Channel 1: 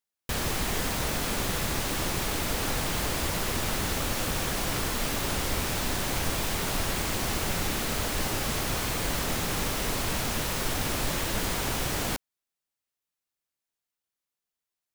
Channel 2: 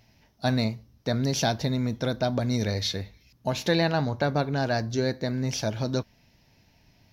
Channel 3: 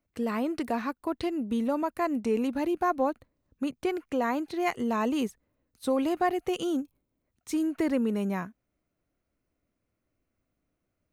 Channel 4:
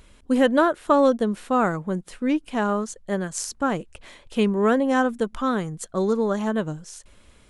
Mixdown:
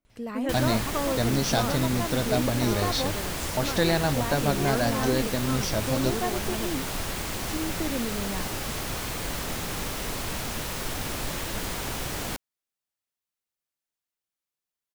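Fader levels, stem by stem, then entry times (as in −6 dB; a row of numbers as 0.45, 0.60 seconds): −2.5, −0.5, −5.0, −12.0 decibels; 0.20, 0.10, 0.00, 0.05 seconds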